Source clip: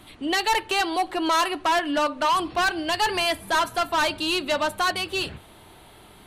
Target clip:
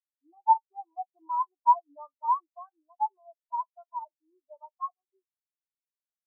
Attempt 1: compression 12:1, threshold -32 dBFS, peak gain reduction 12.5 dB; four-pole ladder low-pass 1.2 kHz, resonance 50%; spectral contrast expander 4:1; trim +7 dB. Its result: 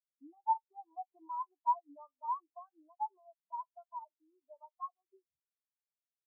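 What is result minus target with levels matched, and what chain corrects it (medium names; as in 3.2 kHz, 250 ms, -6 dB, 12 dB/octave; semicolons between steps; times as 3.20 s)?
compression: peak gain reduction +12.5 dB
four-pole ladder low-pass 1.2 kHz, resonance 50%; spectral contrast expander 4:1; trim +7 dB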